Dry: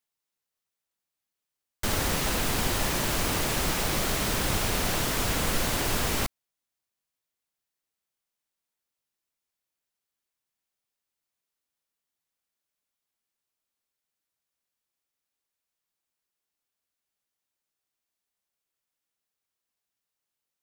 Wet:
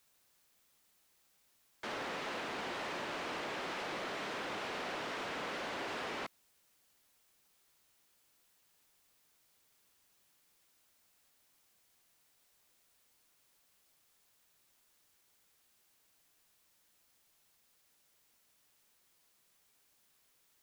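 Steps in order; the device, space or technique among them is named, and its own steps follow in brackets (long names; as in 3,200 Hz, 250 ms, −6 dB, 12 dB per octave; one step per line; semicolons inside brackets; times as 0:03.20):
tape answering machine (band-pass filter 340–2,900 Hz; soft clipping −28 dBFS, distortion −16 dB; tape wow and flutter; white noise bed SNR 25 dB)
level −6 dB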